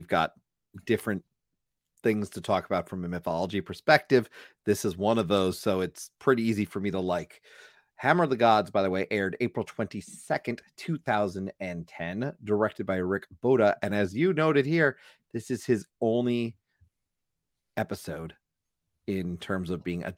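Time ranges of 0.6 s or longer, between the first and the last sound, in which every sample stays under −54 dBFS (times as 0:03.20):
0:01.21–0:01.98
0:16.84–0:17.77
0:18.34–0:19.08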